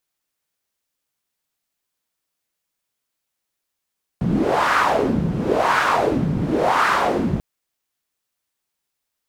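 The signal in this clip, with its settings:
wind from filtered noise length 3.19 s, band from 160 Hz, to 1,300 Hz, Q 2.8, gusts 3, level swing 3 dB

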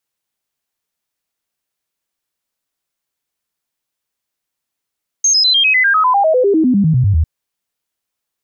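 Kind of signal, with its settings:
stepped sweep 6,410 Hz down, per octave 3, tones 20, 0.10 s, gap 0.00 s −8.5 dBFS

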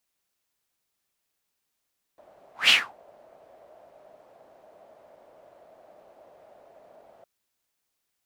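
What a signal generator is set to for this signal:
pass-by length 5.06 s, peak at 0:00.52, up 0.17 s, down 0.26 s, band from 630 Hz, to 3,000 Hz, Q 6, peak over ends 38 dB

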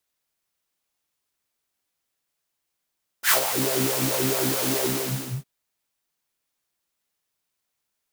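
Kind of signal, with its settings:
subtractive patch with filter wobble C3, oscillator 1 triangle, oscillator 2 saw, noise −4 dB, filter highpass, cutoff 160 Hz, Q 4.3, filter envelope 3 octaves, filter decay 0.37 s, attack 79 ms, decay 0.09 s, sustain −9 dB, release 0.63 s, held 1.58 s, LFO 4.6 Hz, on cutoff 0.6 octaves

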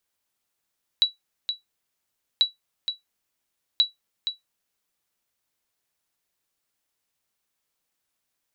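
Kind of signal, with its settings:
ping with an echo 3,920 Hz, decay 0.15 s, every 1.39 s, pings 3, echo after 0.47 s, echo −8.5 dB −10 dBFS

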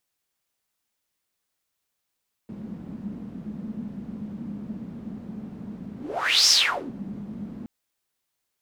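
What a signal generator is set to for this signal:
pass-by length 5.17 s, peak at 0:04.00, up 0.55 s, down 0.46 s, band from 210 Hz, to 5,500 Hz, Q 7.2, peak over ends 19 dB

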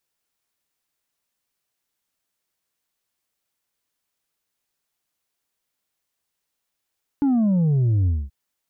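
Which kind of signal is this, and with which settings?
bass drop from 290 Hz, over 1.08 s, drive 3.5 dB, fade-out 0.23 s, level −16.5 dB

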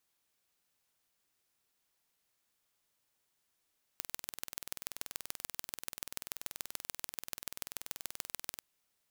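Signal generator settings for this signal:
impulse train 20.7 per second, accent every 3, −9 dBFS 4.62 s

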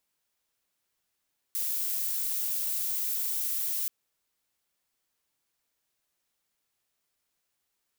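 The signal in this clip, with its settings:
noise violet, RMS −30.5 dBFS 2.33 s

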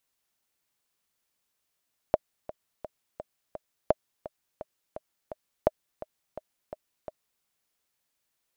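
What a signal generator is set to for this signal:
click track 170 BPM, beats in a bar 5, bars 3, 620 Hz, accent 17 dB −7 dBFS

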